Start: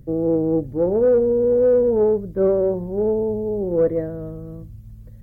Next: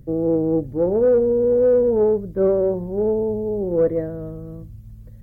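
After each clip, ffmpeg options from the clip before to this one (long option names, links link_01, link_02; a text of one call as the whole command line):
ffmpeg -i in.wav -af anull out.wav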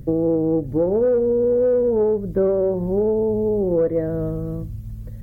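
ffmpeg -i in.wav -af "acompressor=threshold=-25dB:ratio=4,volume=7.5dB" out.wav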